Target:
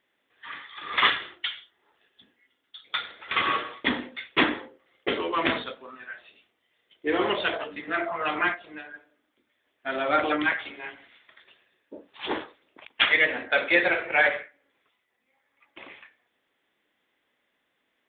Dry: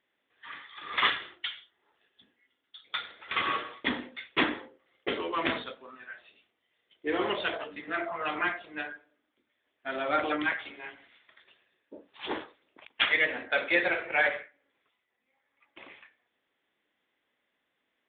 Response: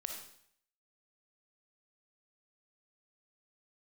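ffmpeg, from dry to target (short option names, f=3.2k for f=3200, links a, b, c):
-filter_complex "[0:a]asettb=1/sr,asplit=3[a][b][c];[a]atrim=end=8.544[d];[b]atrim=start=8.54:end=8.94,asetpts=PTS-STARTPTS,afade=t=in:d=0.004:c=qsin,afade=t=out:st=0.396:d=0.004:c=qsin,acompressor=threshold=-44dB:ratio=4[e];[c]atrim=start=8.936[f];[d][e]acrossfade=d=0.004:c1=hsin:c2=qsin[g];[g][f]acrossfade=d=0.004:c1=qsin:c2=hsin,volume=4.5dB"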